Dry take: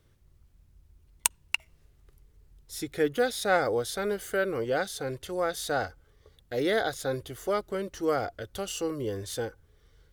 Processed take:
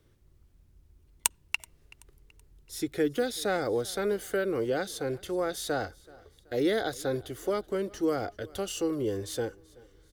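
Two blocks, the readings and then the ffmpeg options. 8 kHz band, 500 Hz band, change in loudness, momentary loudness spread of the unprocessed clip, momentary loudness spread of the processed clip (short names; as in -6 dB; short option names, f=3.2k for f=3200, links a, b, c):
-1.0 dB, -0.5 dB, -1.0 dB, 10 LU, 7 LU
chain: -filter_complex "[0:a]equalizer=f=330:t=o:w=0.93:g=5.5,acrossover=split=320|3000[a][b][c];[b]acompressor=threshold=-26dB:ratio=6[d];[a][d][c]amix=inputs=3:normalize=0,asplit=2[e][f];[f]aecho=0:1:379|758|1137:0.0668|0.0274|0.0112[g];[e][g]amix=inputs=2:normalize=0,volume=-1dB"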